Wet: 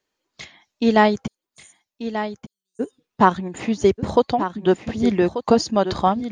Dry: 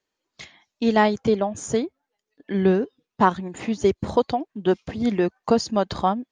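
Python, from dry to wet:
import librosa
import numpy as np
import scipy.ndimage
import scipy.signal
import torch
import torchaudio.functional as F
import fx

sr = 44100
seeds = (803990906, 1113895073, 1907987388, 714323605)

y = fx.cheby2_highpass(x, sr, hz=2100.0, order=4, stop_db=80, at=(1.26, 2.79), fade=0.02)
y = y + 10.0 ** (-10.5 / 20.0) * np.pad(y, (int(1187 * sr / 1000.0), 0))[:len(y)]
y = F.gain(torch.from_numpy(y), 3.0).numpy()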